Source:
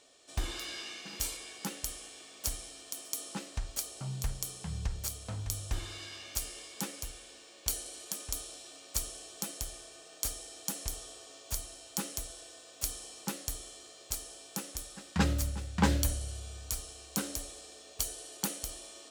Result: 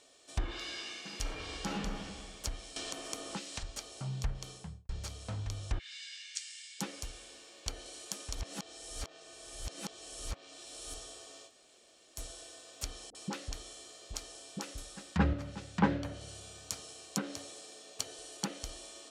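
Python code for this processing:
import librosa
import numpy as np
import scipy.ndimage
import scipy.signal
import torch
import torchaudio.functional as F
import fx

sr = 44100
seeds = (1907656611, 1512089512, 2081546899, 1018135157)

y = fx.reverb_throw(x, sr, start_s=1.17, length_s=0.78, rt60_s=1.6, drr_db=-4.5)
y = fx.band_squash(y, sr, depth_pct=100, at=(2.76, 3.63))
y = fx.studio_fade_out(y, sr, start_s=4.48, length_s=0.41)
y = fx.ellip_bandpass(y, sr, low_hz=1800.0, high_hz=8500.0, order=3, stop_db=40, at=(5.78, 6.79), fade=0.02)
y = fx.dispersion(y, sr, late='highs', ms=48.0, hz=560.0, at=(13.1, 14.78))
y = fx.highpass(y, sr, hz=110.0, slope=24, at=(15.33, 18.19))
y = fx.edit(y, sr, fx.reverse_span(start_s=8.35, length_s=2.59),
    fx.room_tone_fill(start_s=11.48, length_s=0.7, crossfade_s=0.06), tone=tone)
y = fx.env_lowpass_down(y, sr, base_hz=2000.0, full_db=-29.0)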